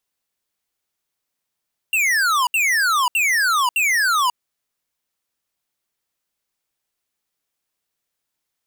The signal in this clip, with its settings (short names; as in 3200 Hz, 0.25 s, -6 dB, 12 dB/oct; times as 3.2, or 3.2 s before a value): burst of laser zaps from 2800 Hz, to 950 Hz, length 0.54 s square, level -17.5 dB, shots 4, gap 0.07 s